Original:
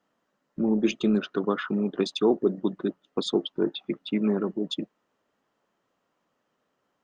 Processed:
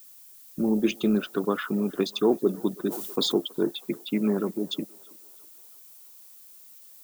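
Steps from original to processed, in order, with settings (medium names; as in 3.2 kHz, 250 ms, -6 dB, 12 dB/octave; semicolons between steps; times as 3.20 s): added noise violet -50 dBFS; on a send: band-passed feedback delay 325 ms, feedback 67%, band-pass 960 Hz, level -21 dB; 2.89–3.34 s: on the sum: decay stretcher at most 37 dB/s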